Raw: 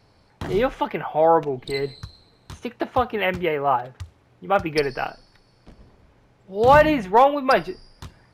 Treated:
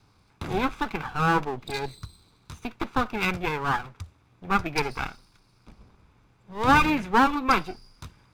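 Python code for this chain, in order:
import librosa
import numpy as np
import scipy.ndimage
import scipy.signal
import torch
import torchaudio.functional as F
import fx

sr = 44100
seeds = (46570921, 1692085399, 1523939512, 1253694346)

y = fx.lower_of_two(x, sr, delay_ms=0.82)
y = y * 10.0 ** (-2.5 / 20.0)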